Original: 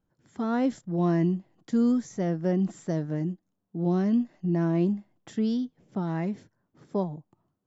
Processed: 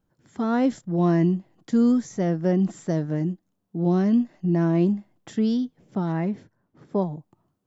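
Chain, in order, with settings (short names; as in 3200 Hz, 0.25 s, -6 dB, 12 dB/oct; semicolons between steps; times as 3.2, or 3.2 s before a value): 6.12–7.02 high shelf 4800 Hz -11 dB; gain +4 dB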